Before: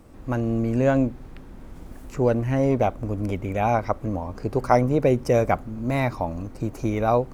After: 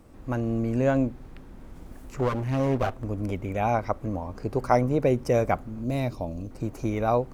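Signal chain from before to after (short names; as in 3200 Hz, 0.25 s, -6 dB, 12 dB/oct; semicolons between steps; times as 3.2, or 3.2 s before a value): 2.17–3.04 minimum comb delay 7.7 ms; 5.84–6.51 band shelf 1300 Hz -10 dB; gain -3 dB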